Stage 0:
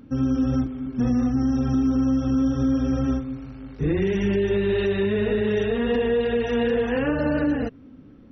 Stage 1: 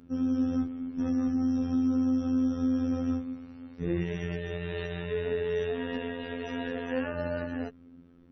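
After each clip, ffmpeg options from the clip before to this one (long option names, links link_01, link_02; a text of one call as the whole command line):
ffmpeg -i in.wav -af "afftfilt=real='hypot(re,im)*cos(PI*b)':imag='0':win_size=2048:overlap=0.75,volume=-4.5dB" out.wav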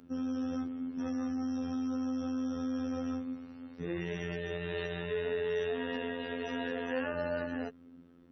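ffmpeg -i in.wav -filter_complex "[0:a]lowshelf=frequency=120:gain=-10.5,bandreject=frequency=2300:width=20,acrossover=split=540[link_01][link_02];[link_01]alimiter=level_in=6.5dB:limit=-24dB:level=0:latency=1,volume=-6.5dB[link_03];[link_03][link_02]amix=inputs=2:normalize=0" out.wav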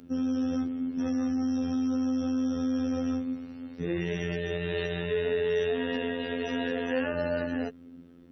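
ffmpeg -i in.wav -af "equalizer=frequency=1100:width_type=o:width=1.2:gain=-5.5,volume=6.5dB" out.wav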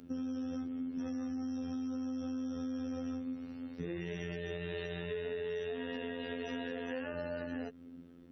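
ffmpeg -i in.wav -af "acompressor=threshold=-33dB:ratio=6,volume=-3dB" out.wav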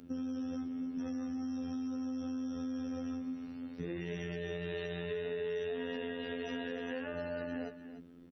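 ffmpeg -i in.wav -af "aecho=1:1:297:0.251" out.wav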